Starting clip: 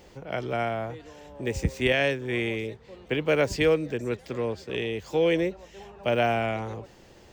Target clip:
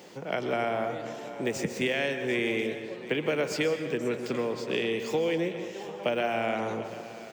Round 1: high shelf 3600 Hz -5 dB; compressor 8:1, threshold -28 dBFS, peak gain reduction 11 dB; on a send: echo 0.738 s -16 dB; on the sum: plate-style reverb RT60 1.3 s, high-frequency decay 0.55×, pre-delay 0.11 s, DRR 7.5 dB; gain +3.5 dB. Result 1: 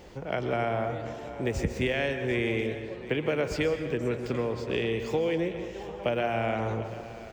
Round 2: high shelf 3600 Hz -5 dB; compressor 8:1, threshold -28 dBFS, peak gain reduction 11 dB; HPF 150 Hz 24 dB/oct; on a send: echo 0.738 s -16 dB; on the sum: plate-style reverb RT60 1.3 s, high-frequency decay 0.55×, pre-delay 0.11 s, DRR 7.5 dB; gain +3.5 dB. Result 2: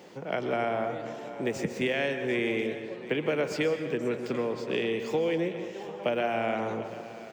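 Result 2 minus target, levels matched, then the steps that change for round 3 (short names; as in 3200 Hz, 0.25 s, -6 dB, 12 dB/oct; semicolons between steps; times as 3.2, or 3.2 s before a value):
8000 Hz band -5.0 dB
change: high shelf 3600 Hz +2 dB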